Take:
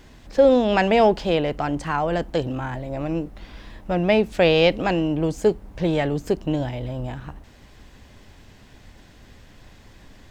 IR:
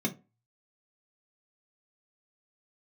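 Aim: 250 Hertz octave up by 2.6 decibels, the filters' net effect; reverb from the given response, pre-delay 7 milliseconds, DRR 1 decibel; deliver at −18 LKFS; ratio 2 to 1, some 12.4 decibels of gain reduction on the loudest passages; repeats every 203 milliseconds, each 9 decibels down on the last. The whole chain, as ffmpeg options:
-filter_complex "[0:a]equalizer=frequency=250:width_type=o:gain=3.5,acompressor=threshold=-33dB:ratio=2,aecho=1:1:203|406|609|812:0.355|0.124|0.0435|0.0152,asplit=2[link_01][link_02];[1:a]atrim=start_sample=2205,adelay=7[link_03];[link_02][link_03]afir=irnorm=-1:irlink=0,volume=-7dB[link_04];[link_01][link_04]amix=inputs=2:normalize=0,volume=4.5dB"

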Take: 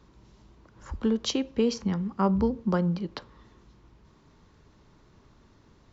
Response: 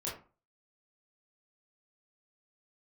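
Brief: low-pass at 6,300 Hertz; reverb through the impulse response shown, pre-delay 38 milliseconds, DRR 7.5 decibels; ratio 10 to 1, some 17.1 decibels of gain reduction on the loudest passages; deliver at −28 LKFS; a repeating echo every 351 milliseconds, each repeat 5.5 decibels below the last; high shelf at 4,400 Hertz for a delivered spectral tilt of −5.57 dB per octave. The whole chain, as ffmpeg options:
-filter_complex "[0:a]lowpass=6300,highshelf=frequency=4400:gain=-5.5,acompressor=threshold=-38dB:ratio=10,aecho=1:1:351|702|1053|1404|1755|2106|2457:0.531|0.281|0.149|0.079|0.0419|0.0222|0.0118,asplit=2[link_01][link_02];[1:a]atrim=start_sample=2205,adelay=38[link_03];[link_02][link_03]afir=irnorm=-1:irlink=0,volume=-9.5dB[link_04];[link_01][link_04]amix=inputs=2:normalize=0,volume=14.5dB"

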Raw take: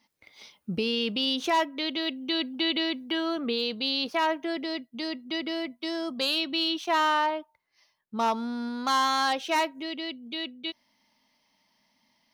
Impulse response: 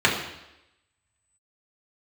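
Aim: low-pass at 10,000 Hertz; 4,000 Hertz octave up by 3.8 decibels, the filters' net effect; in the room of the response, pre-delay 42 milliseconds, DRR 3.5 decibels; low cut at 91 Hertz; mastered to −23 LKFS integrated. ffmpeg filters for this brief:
-filter_complex "[0:a]highpass=91,lowpass=10000,equalizer=frequency=4000:width_type=o:gain=5,asplit=2[link_01][link_02];[1:a]atrim=start_sample=2205,adelay=42[link_03];[link_02][link_03]afir=irnorm=-1:irlink=0,volume=-23dB[link_04];[link_01][link_04]amix=inputs=2:normalize=0,volume=2dB"

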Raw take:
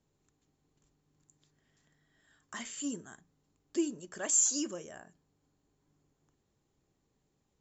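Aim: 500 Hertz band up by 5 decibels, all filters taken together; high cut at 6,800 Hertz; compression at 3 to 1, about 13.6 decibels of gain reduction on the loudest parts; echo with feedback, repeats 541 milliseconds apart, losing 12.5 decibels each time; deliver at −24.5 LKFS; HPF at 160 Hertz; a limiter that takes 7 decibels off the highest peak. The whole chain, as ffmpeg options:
ffmpeg -i in.wav -af "highpass=160,lowpass=6800,equalizer=frequency=500:width_type=o:gain=8,acompressor=threshold=-41dB:ratio=3,alimiter=level_in=11.5dB:limit=-24dB:level=0:latency=1,volume=-11.5dB,aecho=1:1:541|1082|1623:0.237|0.0569|0.0137,volume=22dB" out.wav

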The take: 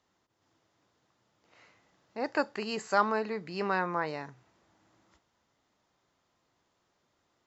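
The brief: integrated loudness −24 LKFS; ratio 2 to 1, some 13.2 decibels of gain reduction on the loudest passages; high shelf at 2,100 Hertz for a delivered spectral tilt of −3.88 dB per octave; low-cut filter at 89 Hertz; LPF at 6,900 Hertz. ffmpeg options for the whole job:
ffmpeg -i in.wav -af "highpass=89,lowpass=6900,highshelf=frequency=2100:gain=6,acompressor=threshold=-43dB:ratio=2,volume=17dB" out.wav

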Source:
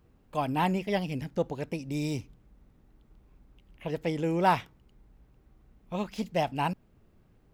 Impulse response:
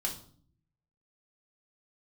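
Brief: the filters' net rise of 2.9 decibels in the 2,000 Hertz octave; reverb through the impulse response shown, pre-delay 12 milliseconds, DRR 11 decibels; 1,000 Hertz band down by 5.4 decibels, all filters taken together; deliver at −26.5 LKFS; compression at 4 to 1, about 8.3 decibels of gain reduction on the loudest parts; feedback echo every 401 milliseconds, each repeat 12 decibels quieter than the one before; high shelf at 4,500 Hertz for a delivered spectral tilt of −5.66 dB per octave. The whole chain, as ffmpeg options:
-filter_complex "[0:a]equalizer=frequency=1000:width_type=o:gain=-8,equalizer=frequency=2000:width_type=o:gain=7.5,highshelf=frequency=4500:gain=-7,acompressor=threshold=-33dB:ratio=4,aecho=1:1:401|802|1203:0.251|0.0628|0.0157,asplit=2[link_01][link_02];[1:a]atrim=start_sample=2205,adelay=12[link_03];[link_02][link_03]afir=irnorm=-1:irlink=0,volume=-14dB[link_04];[link_01][link_04]amix=inputs=2:normalize=0,volume=11dB"

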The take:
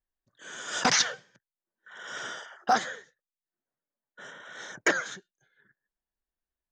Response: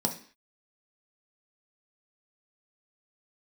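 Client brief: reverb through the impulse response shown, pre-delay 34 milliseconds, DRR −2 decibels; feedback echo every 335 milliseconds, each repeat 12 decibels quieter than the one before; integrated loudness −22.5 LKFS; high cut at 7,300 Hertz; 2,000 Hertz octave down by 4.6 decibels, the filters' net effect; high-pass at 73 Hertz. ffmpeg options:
-filter_complex "[0:a]highpass=73,lowpass=7300,equalizer=frequency=2000:width_type=o:gain=-6,aecho=1:1:335|670|1005:0.251|0.0628|0.0157,asplit=2[link_01][link_02];[1:a]atrim=start_sample=2205,adelay=34[link_03];[link_02][link_03]afir=irnorm=-1:irlink=0,volume=-5dB[link_04];[link_01][link_04]amix=inputs=2:normalize=0,volume=3dB"

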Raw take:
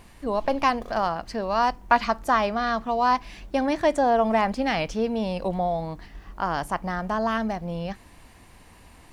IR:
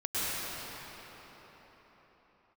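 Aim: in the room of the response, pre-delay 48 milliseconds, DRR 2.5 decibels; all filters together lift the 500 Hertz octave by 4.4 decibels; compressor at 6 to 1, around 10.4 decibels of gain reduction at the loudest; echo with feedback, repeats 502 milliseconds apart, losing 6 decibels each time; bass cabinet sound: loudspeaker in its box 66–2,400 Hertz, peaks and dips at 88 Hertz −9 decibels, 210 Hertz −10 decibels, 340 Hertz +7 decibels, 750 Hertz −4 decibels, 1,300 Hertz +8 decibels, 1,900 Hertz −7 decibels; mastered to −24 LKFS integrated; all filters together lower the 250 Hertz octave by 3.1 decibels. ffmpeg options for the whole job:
-filter_complex "[0:a]equalizer=frequency=250:width_type=o:gain=-3.5,equalizer=frequency=500:width_type=o:gain=7,acompressor=threshold=-24dB:ratio=6,aecho=1:1:502|1004|1506|2008|2510|3012:0.501|0.251|0.125|0.0626|0.0313|0.0157,asplit=2[link_01][link_02];[1:a]atrim=start_sample=2205,adelay=48[link_03];[link_02][link_03]afir=irnorm=-1:irlink=0,volume=-12.5dB[link_04];[link_01][link_04]amix=inputs=2:normalize=0,highpass=frequency=66:width=0.5412,highpass=frequency=66:width=1.3066,equalizer=frequency=88:width_type=q:width=4:gain=-9,equalizer=frequency=210:width_type=q:width=4:gain=-10,equalizer=frequency=340:width_type=q:width=4:gain=7,equalizer=frequency=750:width_type=q:width=4:gain=-4,equalizer=frequency=1300:width_type=q:width=4:gain=8,equalizer=frequency=1900:width_type=q:width=4:gain=-7,lowpass=frequency=2400:width=0.5412,lowpass=frequency=2400:width=1.3066,volume=2.5dB"

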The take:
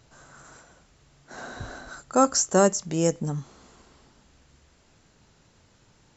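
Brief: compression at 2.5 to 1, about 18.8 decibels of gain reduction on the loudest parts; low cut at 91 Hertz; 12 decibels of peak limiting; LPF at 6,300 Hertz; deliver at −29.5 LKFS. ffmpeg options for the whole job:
ffmpeg -i in.wav -af "highpass=91,lowpass=6300,acompressor=threshold=-43dB:ratio=2.5,volume=18dB,alimiter=limit=-17dB:level=0:latency=1" out.wav

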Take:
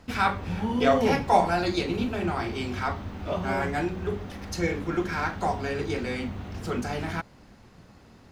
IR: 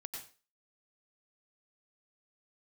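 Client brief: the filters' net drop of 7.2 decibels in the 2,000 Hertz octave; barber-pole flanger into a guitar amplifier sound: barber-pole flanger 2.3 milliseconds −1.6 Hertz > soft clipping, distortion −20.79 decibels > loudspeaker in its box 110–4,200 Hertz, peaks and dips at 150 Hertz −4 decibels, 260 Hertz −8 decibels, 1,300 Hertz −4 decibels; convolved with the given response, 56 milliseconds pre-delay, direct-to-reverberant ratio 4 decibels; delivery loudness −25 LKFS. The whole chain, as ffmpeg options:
-filter_complex "[0:a]equalizer=frequency=2000:width_type=o:gain=-8.5,asplit=2[link_01][link_02];[1:a]atrim=start_sample=2205,adelay=56[link_03];[link_02][link_03]afir=irnorm=-1:irlink=0,volume=-1.5dB[link_04];[link_01][link_04]amix=inputs=2:normalize=0,asplit=2[link_05][link_06];[link_06]adelay=2.3,afreqshift=-1.6[link_07];[link_05][link_07]amix=inputs=2:normalize=1,asoftclip=threshold=-16dB,highpass=110,equalizer=frequency=150:width_type=q:width=4:gain=-4,equalizer=frequency=260:width_type=q:width=4:gain=-8,equalizer=frequency=1300:width_type=q:width=4:gain=-4,lowpass=frequency=4200:width=0.5412,lowpass=frequency=4200:width=1.3066,volume=8dB"

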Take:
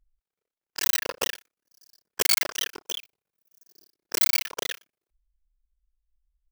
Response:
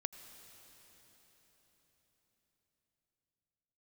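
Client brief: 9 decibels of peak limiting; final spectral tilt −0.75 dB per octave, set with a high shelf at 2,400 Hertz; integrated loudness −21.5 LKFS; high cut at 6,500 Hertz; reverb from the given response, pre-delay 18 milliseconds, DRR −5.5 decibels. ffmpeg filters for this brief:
-filter_complex "[0:a]lowpass=6500,highshelf=frequency=2400:gain=6.5,alimiter=limit=-16dB:level=0:latency=1,asplit=2[link_01][link_02];[1:a]atrim=start_sample=2205,adelay=18[link_03];[link_02][link_03]afir=irnorm=-1:irlink=0,volume=7dB[link_04];[link_01][link_04]amix=inputs=2:normalize=0,volume=2.5dB"

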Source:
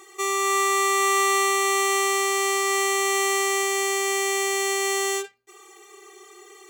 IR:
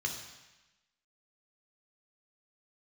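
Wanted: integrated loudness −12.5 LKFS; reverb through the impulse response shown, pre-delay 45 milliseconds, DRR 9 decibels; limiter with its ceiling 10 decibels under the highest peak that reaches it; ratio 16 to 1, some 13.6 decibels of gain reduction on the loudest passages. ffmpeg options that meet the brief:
-filter_complex "[0:a]acompressor=threshold=-32dB:ratio=16,alimiter=level_in=8.5dB:limit=-24dB:level=0:latency=1,volume=-8.5dB,asplit=2[link_01][link_02];[1:a]atrim=start_sample=2205,adelay=45[link_03];[link_02][link_03]afir=irnorm=-1:irlink=0,volume=-12.5dB[link_04];[link_01][link_04]amix=inputs=2:normalize=0,volume=25.5dB"

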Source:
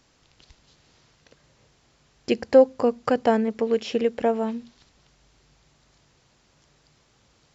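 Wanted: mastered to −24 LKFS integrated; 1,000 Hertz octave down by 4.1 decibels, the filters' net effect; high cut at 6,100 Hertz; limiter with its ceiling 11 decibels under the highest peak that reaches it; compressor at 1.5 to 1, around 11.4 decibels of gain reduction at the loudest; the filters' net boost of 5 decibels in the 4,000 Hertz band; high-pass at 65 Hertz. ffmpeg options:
ffmpeg -i in.wav -af "highpass=65,lowpass=6100,equalizer=frequency=1000:width_type=o:gain=-7,equalizer=frequency=4000:width_type=o:gain=8.5,acompressor=threshold=-43dB:ratio=1.5,volume=14dB,alimiter=limit=-13dB:level=0:latency=1" out.wav

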